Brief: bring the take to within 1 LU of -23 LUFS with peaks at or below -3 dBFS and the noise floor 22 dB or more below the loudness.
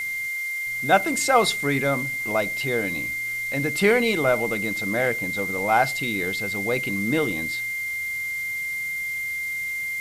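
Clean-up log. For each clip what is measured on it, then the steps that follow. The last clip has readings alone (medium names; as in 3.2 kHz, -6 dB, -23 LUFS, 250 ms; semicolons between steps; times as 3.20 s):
steady tone 2.1 kHz; tone level -26 dBFS; noise floor -29 dBFS; noise floor target -46 dBFS; loudness -23.5 LUFS; peak level -5.5 dBFS; loudness target -23.0 LUFS
-> band-stop 2.1 kHz, Q 30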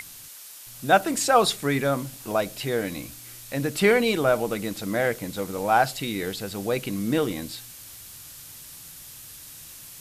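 steady tone not found; noise floor -44 dBFS; noise floor target -47 dBFS
-> noise reduction 6 dB, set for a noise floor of -44 dBFS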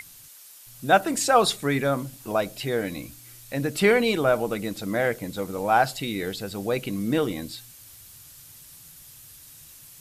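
noise floor -48 dBFS; loudness -24.5 LUFS; peak level -5.0 dBFS; loudness target -23.0 LUFS
-> trim +1.5 dB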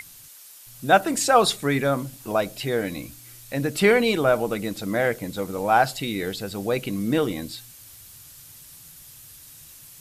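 loudness -23.0 LUFS; peak level -3.5 dBFS; noise floor -47 dBFS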